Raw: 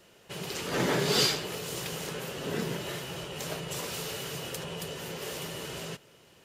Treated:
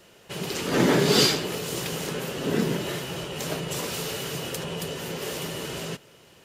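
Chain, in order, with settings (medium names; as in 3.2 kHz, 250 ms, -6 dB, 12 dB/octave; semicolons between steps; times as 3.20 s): dynamic bell 260 Hz, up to +7 dB, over -46 dBFS, Q 1.3; trim +4.5 dB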